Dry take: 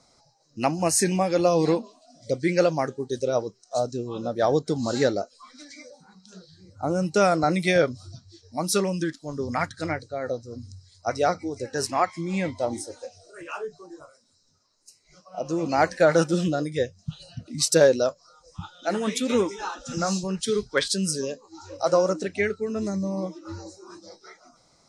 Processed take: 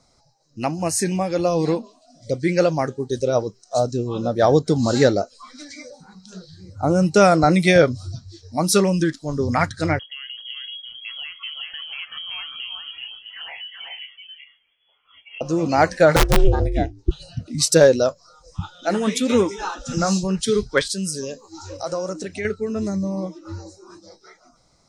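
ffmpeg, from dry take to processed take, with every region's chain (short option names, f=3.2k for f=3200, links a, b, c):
-filter_complex "[0:a]asettb=1/sr,asplit=3[a][b][c];[a]atrim=end=9.994[d];[b]atrim=start=9.99:end=15.41,asetpts=PTS-STARTPTS,afade=t=in:d=0.004:c=qsin,afade=t=out:st=5.416:d=0.004:c=qsin,acompressor=threshold=-38dB:ratio=8:attack=3.2:release=140:knee=1:detection=peak,aecho=1:1:382:0.708,atrim=end_sample=239022,lowpass=f=2.9k:t=q:w=0.5098,lowpass=f=2.9k:t=q:w=0.6013,lowpass=f=2.9k:t=q:w=0.9,lowpass=f=2.9k:t=q:w=2.563,afreqshift=-3400[e];[c]atrim=start=15.406[f];[d][e]acrossfade=d=0.004:c1=hsin:c2=qsin[g];[g][f]acrossfade=d=0.004:c1=qsin:c2=hsin,asettb=1/sr,asplit=3[h][i][j];[h]atrim=end=16.164[k];[i]atrim=start=16.16:end=17.11,asetpts=PTS-STARTPTS,afade=t=in:d=0.004:c=qsin,afade=t=out:st=0.946:d=0.004:c=qsin,bass=f=250:g=7,treble=f=4k:g=-11,aeval=exprs='(mod(3.98*val(0)+1,2)-1)/3.98':c=same,aeval=exprs='val(0)*sin(2*PI*200*n/s)':c=same[l];[j]atrim=start=17.106[m];[k][l]acrossfade=d=0.004:c1=hsin:c2=qsin[n];[n][m]acrossfade=d=0.004:c1=qsin:c2=hsin,asettb=1/sr,asplit=3[o][p][q];[o]atrim=end=20.814[r];[p]atrim=start=20.81:end=22.45,asetpts=PTS-STARTPTS,afade=t=in:d=0.004:c=qsin,afade=t=out:st=1.636:d=0.004:c=qsin,highshelf=f=4.9k:g=7,acompressor=threshold=-34dB:ratio=2:attack=3.2:release=140:knee=1:detection=peak[s];[q]atrim=start=22.446[t];[r][s]acrossfade=d=0.004:c1=hsin:c2=qsin[u];[u][t]acrossfade=d=0.004:c1=qsin:c2=hsin,lowshelf=f=99:g=11.5,dynaudnorm=f=530:g=11:m=11.5dB,volume=-1dB"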